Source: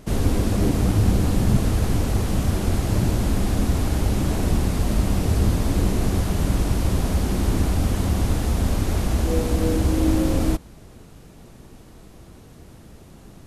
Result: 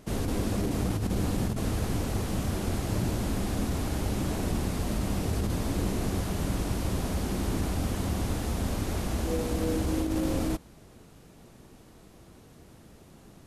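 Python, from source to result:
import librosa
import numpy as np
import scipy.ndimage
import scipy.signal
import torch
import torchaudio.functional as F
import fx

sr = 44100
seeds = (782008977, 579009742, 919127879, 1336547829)

y = fx.low_shelf(x, sr, hz=92.0, db=-7.0)
y = fx.over_compress(y, sr, threshold_db=-21.0, ratio=-0.5)
y = y * 10.0 ** (-5.5 / 20.0)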